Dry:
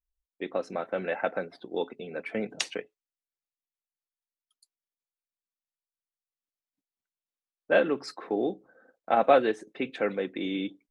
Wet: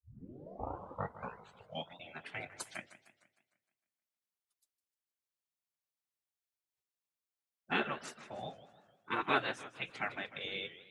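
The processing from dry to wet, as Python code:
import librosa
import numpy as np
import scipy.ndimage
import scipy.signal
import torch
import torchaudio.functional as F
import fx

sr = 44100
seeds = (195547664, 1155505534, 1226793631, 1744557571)

y = fx.tape_start_head(x, sr, length_s=1.98)
y = fx.spec_gate(y, sr, threshold_db=-15, keep='weak')
y = fx.echo_warbled(y, sr, ms=153, feedback_pct=50, rate_hz=2.8, cents=208, wet_db=-15.0)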